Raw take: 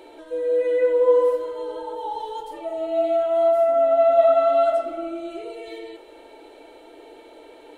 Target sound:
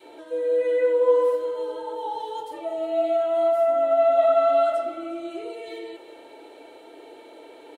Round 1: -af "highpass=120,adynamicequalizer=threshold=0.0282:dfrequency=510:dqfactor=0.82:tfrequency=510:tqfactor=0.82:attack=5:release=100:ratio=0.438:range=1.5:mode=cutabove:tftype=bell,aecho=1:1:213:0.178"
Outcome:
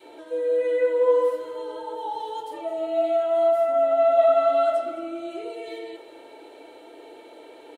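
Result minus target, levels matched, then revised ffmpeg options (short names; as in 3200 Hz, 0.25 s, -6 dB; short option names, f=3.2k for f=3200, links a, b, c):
echo 0.146 s early
-af "highpass=120,adynamicequalizer=threshold=0.0282:dfrequency=510:dqfactor=0.82:tfrequency=510:tqfactor=0.82:attack=5:release=100:ratio=0.438:range=1.5:mode=cutabove:tftype=bell,aecho=1:1:359:0.178"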